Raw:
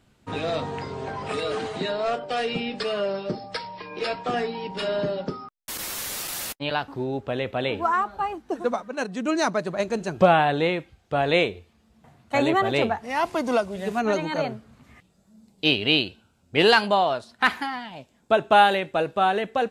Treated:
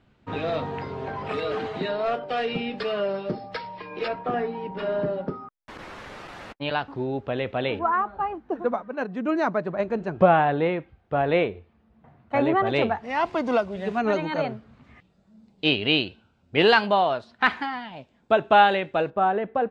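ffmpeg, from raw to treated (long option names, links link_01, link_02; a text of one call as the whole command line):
ffmpeg -i in.wav -af "asetnsamples=nb_out_samples=441:pad=0,asendcmd='4.08 lowpass f 1700;6.61 lowpass f 3700;7.79 lowpass f 1900;12.67 lowpass f 3600;19.1 lowpass f 1400',lowpass=3200" out.wav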